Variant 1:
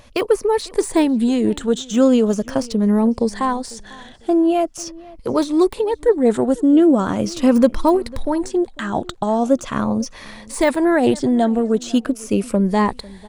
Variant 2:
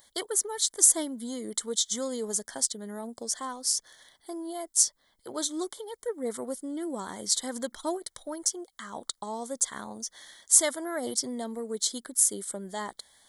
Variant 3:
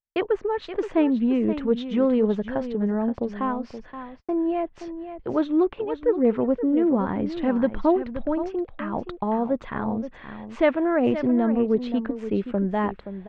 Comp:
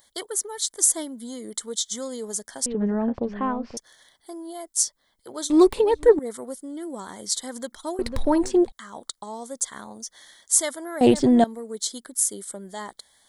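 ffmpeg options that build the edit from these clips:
-filter_complex "[0:a]asplit=3[a][b][c];[1:a]asplit=5[d][e][f][g][h];[d]atrim=end=2.662[i];[2:a]atrim=start=2.658:end=3.772[j];[e]atrim=start=3.768:end=5.502[k];[a]atrim=start=5.498:end=6.192[l];[f]atrim=start=6.188:end=7.992[m];[b]atrim=start=7.988:end=8.722[n];[g]atrim=start=8.718:end=11.012[o];[c]atrim=start=11.008:end=11.442[p];[h]atrim=start=11.438[q];[i][j]acrossfade=d=0.004:c1=hsin:c2=hsin[r];[r][k]acrossfade=d=0.004:c1=hsin:c2=hsin[s];[s][l]acrossfade=d=0.004:c1=hsin:c2=hsin[t];[t][m]acrossfade=d=0.004:c1=hsin:c2=hsin[u];[u][n]acrossfade=d=0.004:c1=hsin:c2=hsin[v];[v][o]acrossfade=d=0.004:c1=hsin:c2=hsin[w];[w][p]acrossfade=d=0.004:c1=hsin:c2=hsin[x];[x][q]acrossfade=d=0.004:c1=hsin:c2=hsin"

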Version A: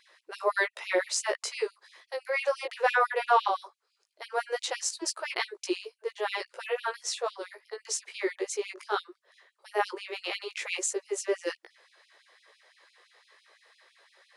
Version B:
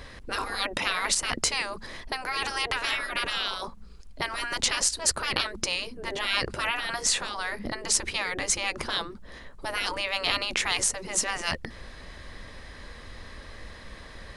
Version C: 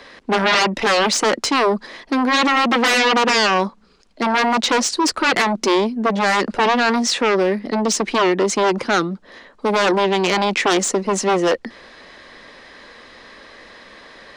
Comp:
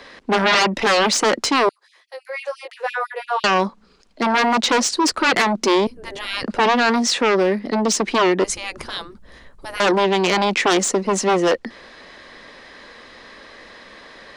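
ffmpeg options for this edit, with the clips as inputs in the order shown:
-filter_complex "[1:a]asplit=2[a][b];[2:a]asplit=4[c][d][e][f];[c]atrim=end=1.692[g];[0:a]atrim=start=1.688:end=3.442[h];[d]atrim=start=3.438:end=5.872[i];[a]atrim=start=5.868:end=6.442[j];[e]atrim=start=6.438:end=8.442[k];[b]atrim=start=8.438:end=9.802[l];[f]atrim=start=9.798[m];[g][h]acrossfade=d=0.004:c1=hsin:c2=hsin[n];[n][i]acrossfade=d=0.004:c1=hsin:c2=hsin[o];[o][j]acrossfade=d=0.004:c1=hsin:c2=hsin[p];[p][k]acrossfade=d=0.004:c1=hsin:c2=hsin[q];[q][l]acrossfade=d=0.004:c1=hsin:c2=hsin[r];[r][m]acrossfade=d=0.004:c1=hsin:c2=hsin"

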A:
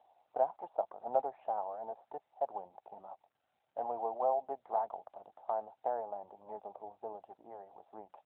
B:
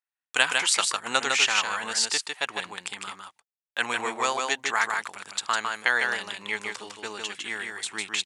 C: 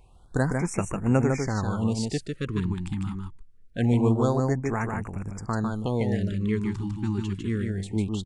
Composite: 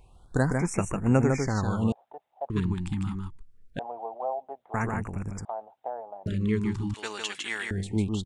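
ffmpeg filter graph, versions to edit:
-filter_complex "[0:a]asplit=3[a][b][c];[2:a]asplit=5[d][e][f][g][h];[d]atrim=end=1.922[i];[a]atrim=start=1.918:end=2.502[j];[e]atrim=start=2.498:end=3.792[k];[b]atrim=start=3.788:end=4.742[l];[f]atrim=start=4.738:end=5.452[m];[c]atrim=start=5.448:end=6.262[n];[g]atrim=start=6.258:end=6.942[o];[1:a]atrim=start=6.938:end=7.712[p];[h]atrim=start=7.708[q];[i][j]acrossfade=d=0.004:c1=hsin:c2=hsin[r];[r][k]acrossfade=d=0.004:c1=hsin:c2=hsin[s];[s][l]acrossfade=d=0.004:c1=hsin:c2=hsin[t];[t][m]acrossfade=d=0.004:c1=hsin:c2=hsin[u];[u][n]acrossfade=d=0.004:c1=hsin:c2=hsin[v];[v][o]acrossfade=d=0.004:c1=hsin:c2=hsin[w];[w][p]acrossfade=d=0.004:c1=hsin:c2=hsin[x];[x][q]acrossfade=d=0.004:c1=hsin:c2=hsin"

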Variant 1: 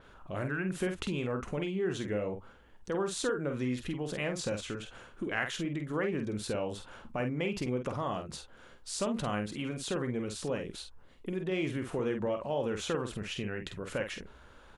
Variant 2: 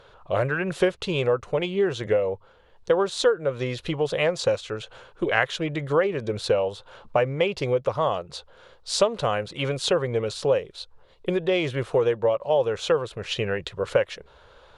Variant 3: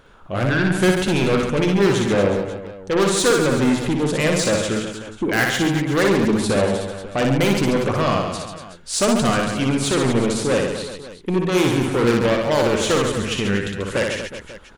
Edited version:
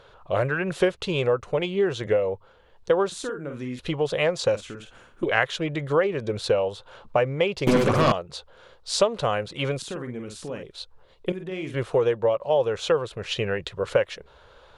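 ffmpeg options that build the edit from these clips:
-filter_complex "[0:a]asplit=4[a][b][c][d];[1:a]asplit=6[e][f][g][h][i][j];[e]atrim=end=3.122[k];[a]atrim=start=3.118:end=3.792[l];[f]atrim=start=3.788:end=4.562[m];[b]atrim=start=4.558:end=5.232[n];[g]atrim=start=5.228:end=7.672[o];[2:a]atrim=start=7.668:end=8.122[p];[h]atrim=start=8.118:end=9.822[q];[c]atrim=start=9.818:end=10.632[r];[i]atrim=start=10.628:end=11.322[s];[d]atrim=start=11.318:end=11.742[t];[j]atrim=start=11.738[u];[k][l]acrossfade=d=0.004:c1=hsin:c2=hsin[v];[v][m]acrossfade=d=0.004:c1=hsin:c2=hsin[w];[w][n]acrossfade=d=0.004:c1=hsin:c2=hsin[x];[x][o]acrossfade=d=0.004:c1=hsin:c2=hsin[y];[y][p]acrossfade=d=0.004:c1=hsin:c2=hsin[z];[z][q]acrossfade=d=0.004:c1=hsin:c2=hsin[aa];[aa][r]acrossfade=d=0.004:c1=hsin:c2=hsin[ab];[ab][s]acrossfade=d=0.004:c1=hsin:c2=hsin[ac];[ac][t]acrossfade=d=0.004:c1=hsin:c2=hsin[ad];[ad][u]acrossfade=d=0.004:c1=hsin:c2=hsin"

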